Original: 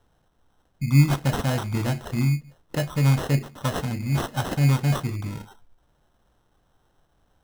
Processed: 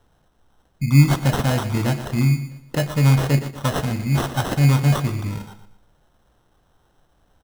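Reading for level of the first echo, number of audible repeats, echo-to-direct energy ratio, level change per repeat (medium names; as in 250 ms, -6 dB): -12.0 dB, 3, -11.5 dB, -9.0 dB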